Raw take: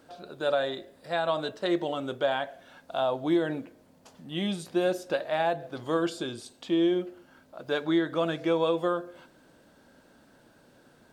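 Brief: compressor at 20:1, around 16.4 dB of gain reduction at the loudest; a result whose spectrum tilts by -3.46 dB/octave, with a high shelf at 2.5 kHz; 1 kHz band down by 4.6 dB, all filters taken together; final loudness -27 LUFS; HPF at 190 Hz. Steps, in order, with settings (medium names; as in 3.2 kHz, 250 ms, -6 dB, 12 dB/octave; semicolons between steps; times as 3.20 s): high-pass 190 Hz; peaking EQ 1 kHz -8 dB; treble shelf 2.5 kHz +7 dB; compression 20:1, threshold -38 dBFS; trim +16.5 dB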